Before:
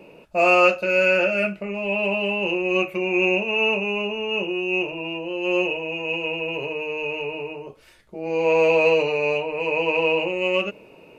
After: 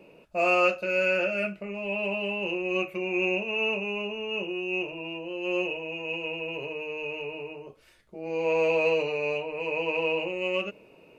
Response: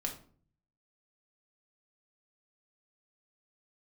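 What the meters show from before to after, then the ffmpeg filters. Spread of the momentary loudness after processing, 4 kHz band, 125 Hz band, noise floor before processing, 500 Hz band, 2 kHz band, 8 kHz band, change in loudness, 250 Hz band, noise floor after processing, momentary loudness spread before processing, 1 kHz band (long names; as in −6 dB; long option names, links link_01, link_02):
11 LU, −6.5 dB, −6.5 dB, −49 dBFS, −6.5 dB, −6.5 dB, can't be measured, −6.5 dB, −6.5 dB, −56 dBFS, 11 LU, −7.0 dB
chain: -af "equalizer=frequency=880:width=7.5:gain=-3,volume=-6.5dB"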